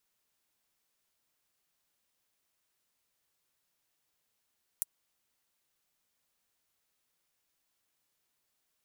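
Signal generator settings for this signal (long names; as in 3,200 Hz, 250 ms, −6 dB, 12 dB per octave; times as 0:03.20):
closed synth hi-hat, high-pass 8,900 Hz, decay 0.03 s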